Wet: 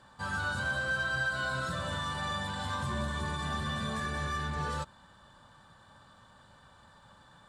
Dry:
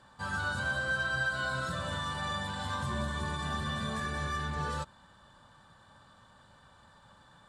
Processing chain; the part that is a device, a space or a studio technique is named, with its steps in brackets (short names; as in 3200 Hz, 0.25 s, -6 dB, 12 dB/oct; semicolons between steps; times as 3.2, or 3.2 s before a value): parallel distortion (in parallel at -9.5 dB: hard clip -34.5 dBFS, distortion -9 dB); on the sum: gain -1.5 dB